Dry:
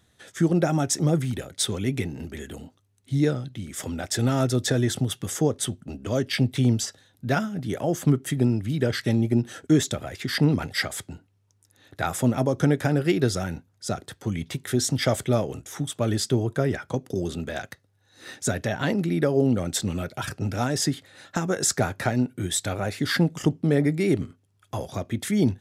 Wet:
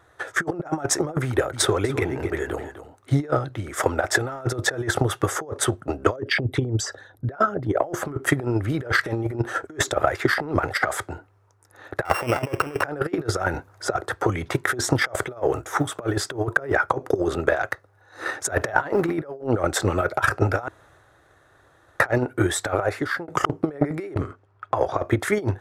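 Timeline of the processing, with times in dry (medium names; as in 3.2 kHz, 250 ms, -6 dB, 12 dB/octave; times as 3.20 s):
1.28–3.39 s: delay 254 ms -11.5 dB
6.16–7.83 s: resonances exaggerated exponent 1.5
12.05–12.83 s: sorted samples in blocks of 16 samples
13.54–14.49 s: three bands compressed up and down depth 40%
15.16–16.77 s: companded quantiser 8-bit
18.52–19.14 s: companding laws mixed up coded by mu
20.68–22.00 s: room tone
22.67–23.28 s: fade out
23.83–25.01 s: level-controlled noise filter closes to 2.7 kHz, open at -21 dBFS
whole clip: FFT filter 110 Hz 0 dB, 220 Hz -12 dB, 330 Hz +6 dB, 1.3 kHz +14 dB, 3.1 kHz -5 dB; compressor with a negative ratio -24 dBFS, ratio -0.5; transient shaper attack +8 dB, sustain +4 dB; trim -2 dB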